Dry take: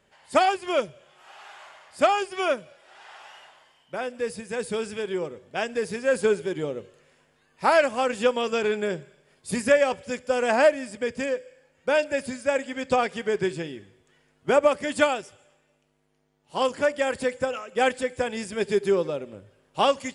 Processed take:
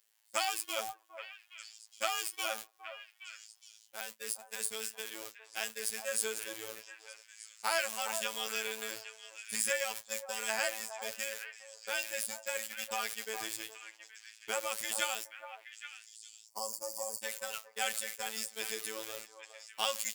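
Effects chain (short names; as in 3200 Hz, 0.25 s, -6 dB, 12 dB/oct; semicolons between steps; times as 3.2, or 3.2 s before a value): zero-crossing step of -33 dBFS; spectral gain 16.43–17.22, 1200–4400 Hz -27 dB; gate -29 dBFS, range -33 dB; pre-emphasis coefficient 0.97; delay with a stepping band-pass 0.412 s, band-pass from 800 Hz, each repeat 1.4 oct, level -6 dB; robotiser 110 Hz; gain +4.5 dB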